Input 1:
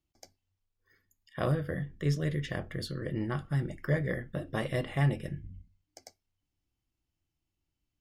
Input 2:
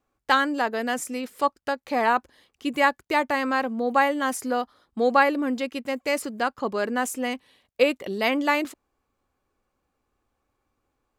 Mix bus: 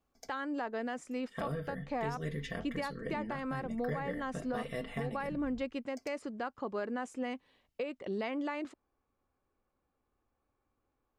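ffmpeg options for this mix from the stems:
ffmpeg -i stem1.wav -i stem2.wav -filter_complex "[0:a]aecho=1:1:4.4:0.79,volume=-2.5dB[link_01];[1:a]lowpass=frequency=8600:width=0.5412,lowpass=frequency=8600:width=1.3066,highshelf=frequency=3200:gain=-12,acompressor=threshold=-22dB:ratio=4,volume=-5dB[link_02];[link_01][link_02]amix=inputs=2:normalize=0,alimiter=level_in=2.5dB:limit=-24dB:level=0:latency=1:release=343,volume=-2.5dB" out.wav

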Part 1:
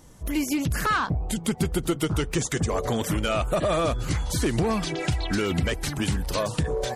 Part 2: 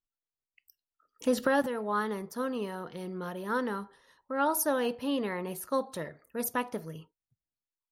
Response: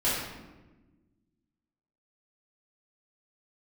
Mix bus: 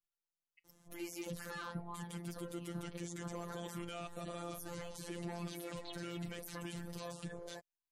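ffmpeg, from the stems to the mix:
-filter_complex "[0:a]lowshelf=frequency=64:gain=-10.5,adelay=650,volume=-11.5dB[link_01];[1:a]acompressor=threshold=-39dB:ratio=6,volume=-2dB[link_02];[link_01][link_02]amix=inputs=2:normalize=0,acrossover=split=340|3000[link_03][link_04][link_05];[link_04]acompressor=threshold=-38dB:ratio=6[link_06];[link_03][link_06][link_05]amix=inputs=3:normalize=0,afftfilt=real='hypot(re,im)*cos(PI*b)':imag='0':win_size=1024:overlap=0.75,alimiter=level_in=6dB:limit=-24dB:level=0:latency=1:release=18,volume=-6dB"

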